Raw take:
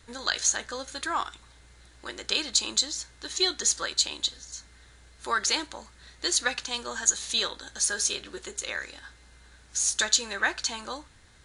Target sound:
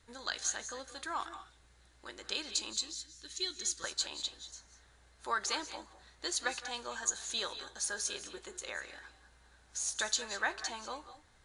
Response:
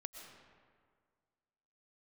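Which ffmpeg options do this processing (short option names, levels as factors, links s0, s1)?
-filter_complex "[0:a]asetnsamples=n=441:p=0,asendcmd='2.73 equalizer g -11;3.84 equalizer g 6.5',equalizer=f=790:t=o:w=1.6:g=2.5[s0];[1:a]atrim=start_sample=2205,afade=t=out:st=0.17:d=0.01,atrim=end_sample=7938,asetrate=26019,aresample=44100[s1];[s0][s1]afir=irnorm=-1:irlink=0,volume=0.398"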